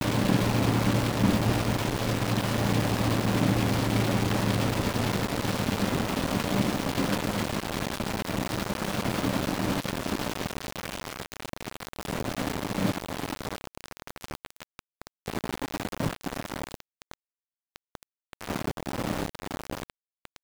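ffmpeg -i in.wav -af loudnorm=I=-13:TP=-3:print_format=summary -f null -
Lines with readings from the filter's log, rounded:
Input Integrated:    -29.0 LUFS
Input True Peak:     -10.8 dBTP
Input LRA:            10.9 LU
Input Threshold:     -39.9 LUFS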